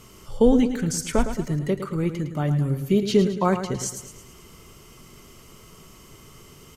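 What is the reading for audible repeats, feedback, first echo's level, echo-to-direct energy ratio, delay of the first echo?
5, 49%, −10.0 dB, −9.0 dB, 109 ms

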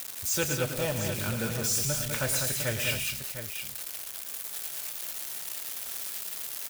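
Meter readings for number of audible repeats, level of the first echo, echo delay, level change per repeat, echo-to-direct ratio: 4, −10.0 dB, 110 ms, repeats not evenly spaced, −3.0 dB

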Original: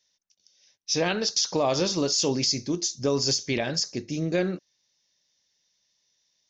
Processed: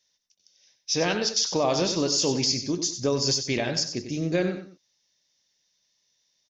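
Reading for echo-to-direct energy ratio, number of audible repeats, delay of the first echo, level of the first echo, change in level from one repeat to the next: −9.0 dB, 2, 94 ms, −9.5 dB, −9.5 dB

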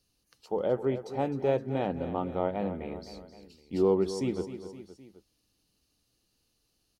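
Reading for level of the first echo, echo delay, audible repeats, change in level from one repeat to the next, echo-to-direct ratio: −12.0 dB, 259 ms, 3, −5.0 dB, −10.5 dB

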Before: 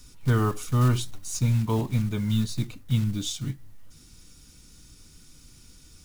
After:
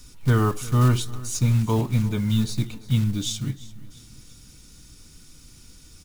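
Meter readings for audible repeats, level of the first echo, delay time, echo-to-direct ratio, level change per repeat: 3, −19.5 dB, 344 ms, −18.5 dB, −6.5 dB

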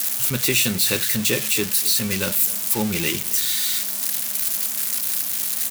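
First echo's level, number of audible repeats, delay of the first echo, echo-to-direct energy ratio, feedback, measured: −20.0 dB, 2, 260 ms, −19.0 dB, 41%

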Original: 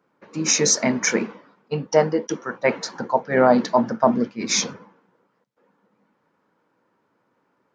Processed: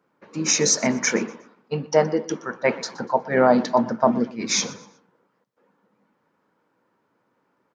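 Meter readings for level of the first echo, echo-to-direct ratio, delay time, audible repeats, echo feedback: −19.5 dB, −19.0 dB, 121 ms, 2, 32%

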